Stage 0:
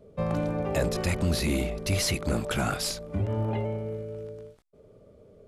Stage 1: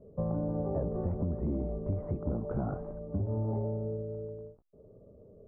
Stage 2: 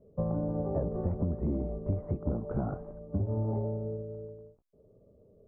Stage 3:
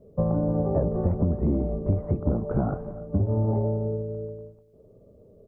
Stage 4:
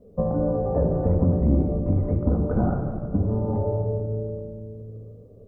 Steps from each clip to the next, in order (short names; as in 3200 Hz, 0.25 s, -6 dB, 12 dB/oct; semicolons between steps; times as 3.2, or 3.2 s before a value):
Bessel low-pass 630 Hz, order 6; compressor, threshold -28 dBFS, peak gain reduction 7 dB
upward expander 1.5:1, over -44 dBFS; gain +2.5 dB
outdoor echo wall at 50 m, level -18 dB; gain +7 dB
shoebox room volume 3400 m³, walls mixed, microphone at 1.9 m